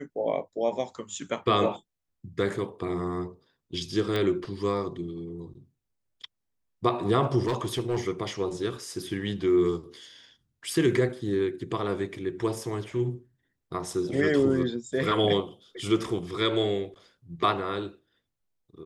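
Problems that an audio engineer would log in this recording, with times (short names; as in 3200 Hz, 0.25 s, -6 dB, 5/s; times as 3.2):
4.16 pop -16 dBFS
7.42–8 clipped -22 dBFS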